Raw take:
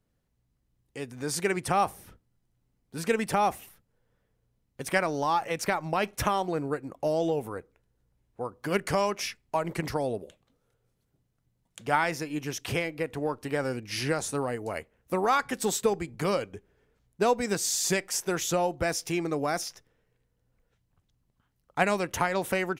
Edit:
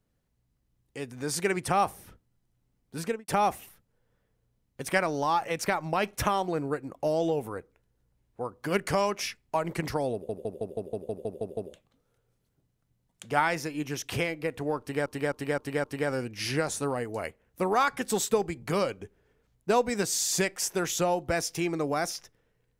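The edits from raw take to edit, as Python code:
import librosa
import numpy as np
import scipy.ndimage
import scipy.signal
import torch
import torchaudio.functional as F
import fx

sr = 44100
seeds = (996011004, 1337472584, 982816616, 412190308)

y = fx.studio_fade_out(x, sr, start_s=2.98, length_s=0.3)
y = fx.edit(y, sr, fx.stutter(start_s=10.13, slice_s=0.16, count=10),
    fx.repeat(start_s=13.36, length_s=0.26, count=5), tone=tone)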